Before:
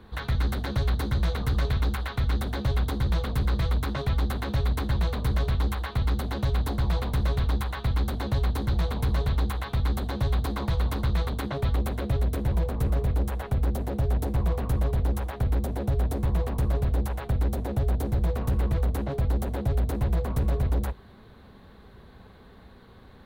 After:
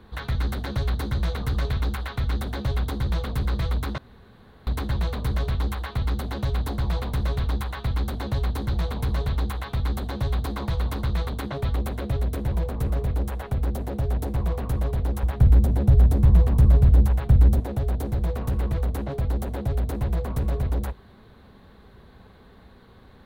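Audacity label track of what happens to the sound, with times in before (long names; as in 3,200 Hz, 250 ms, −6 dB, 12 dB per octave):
3.980000	4.670000	fill with room tone
15.230000	17.600000	bass and treble bass +10 dB, treble 0 dB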